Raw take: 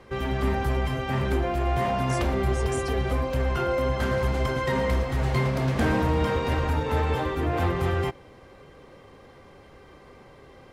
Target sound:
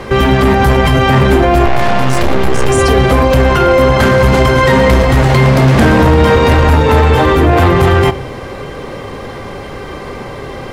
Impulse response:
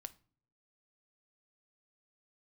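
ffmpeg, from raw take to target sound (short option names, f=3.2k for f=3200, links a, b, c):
-filter_complex "[0:a]asoftclip=type=tanh:threshold=-18.5dB,asettb=1/sr,asplit=3[a][b][c];[a]atrim=end=1.654[d];[b]atrim=start=1.65:end=2.69,asetpts=PTS-STARTPTS,afade=t=in:d=0.004:c=qsin,afade=t=out:st=1.036:d=0.004:c=qsin,aeval=exprs='0.112*(cos(1*acos(clip(val(0)/0.112,-1,1)))-cos(1*PI/2))+0.0562*(cos(2*acos(clip(val(0)/0.112,-1,1)))-cos(2*PI/2))+0.0126*(cos(6*acos(clip(val(0)/0.112,-1,1)))-cos(6*PI/2))':c=same[e];[c]atrim=start=2.686[f];[d][e]acrossfade=d=0.004:c1=hsin:c2=qsin[g];[g][f]acrossfade=d=0.004:c1=qsin:c2=hsin,asplit=2[h][i];[1:a]atrim=start_sample=2205[j];[i][j]afir=irnorm=-1:irlink=0,volume=7dB[k];[h][k]amix=inputs=2:normalize=0,alimiter=level_in=18.5dB:limit=-1dB:release=50:level=0:latency=1,volume=-1dB"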